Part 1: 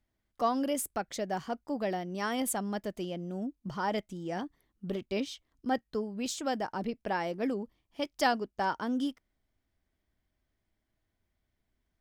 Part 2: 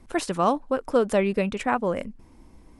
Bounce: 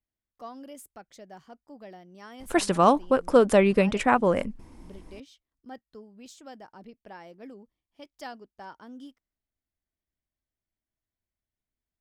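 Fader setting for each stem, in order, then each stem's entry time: -13.0 dB, +3.0 dB; 0.00 s, 2.40 s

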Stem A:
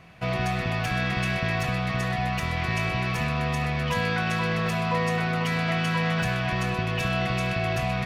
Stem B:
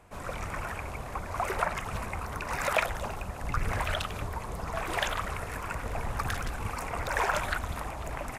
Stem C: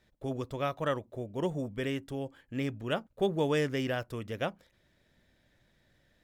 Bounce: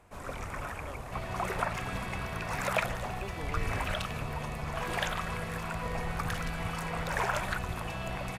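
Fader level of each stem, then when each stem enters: -13.5 dB, -3.0 dB, -15.5 dB; 0.90 s, 0.00 s, 0.00 s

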